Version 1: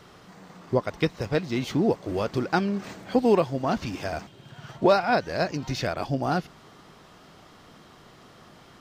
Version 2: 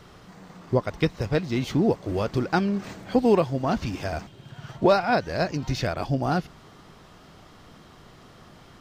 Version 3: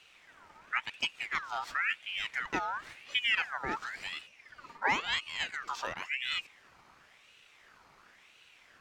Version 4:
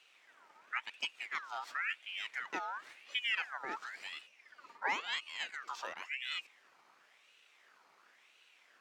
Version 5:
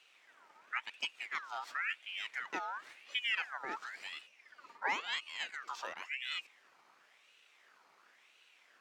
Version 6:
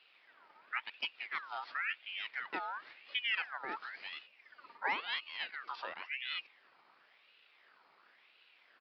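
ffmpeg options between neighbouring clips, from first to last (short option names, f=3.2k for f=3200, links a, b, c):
-af "lowshelf=f=100:g=10"
-af "aeval=exprs='val(0)*sin(2*PI*1900*n/s+1900*0.45/0.95*sin(2*PI*0.95*n/s))':c=same,volume=-8dB"
-af "highpass=330,volume=-5.5dB"
-af anull
-af "aresample=11025,aresample=44100"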